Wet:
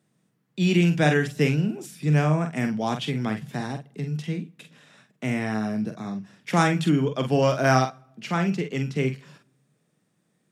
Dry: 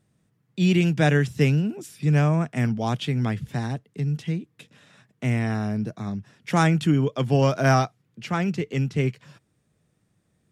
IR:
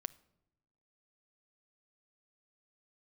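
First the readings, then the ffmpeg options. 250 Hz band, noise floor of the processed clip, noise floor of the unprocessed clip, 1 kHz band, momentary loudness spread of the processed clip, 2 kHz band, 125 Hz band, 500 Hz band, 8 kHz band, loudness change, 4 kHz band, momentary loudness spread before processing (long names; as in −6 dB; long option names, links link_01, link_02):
−0.5 dB, −71 dBFS, −70 dBFS, +0.5 dB, 13 LU, +1.0 dB, −3.0 dB, +0.5 dB, +1.0 dB, −1.0 dB, +1.0 dB, 11 LU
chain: -filter_complex "[0:a]highpass=frequency=150:width=0.5412,highpass=frequency=150:width=1.3066,asplit=2[link_01][link_02];[link_02]equalizer=frequency=330:width=1.5:gain=-5.5[link_03];[1:a]atrim=start_sample=2205,adelay=46[link_04];[link_03][link_04]afir=irnorm=-1:irlink=0,volume=-4dB[link_05];[link_01][link_05]amix=inputs=2:normalize=0"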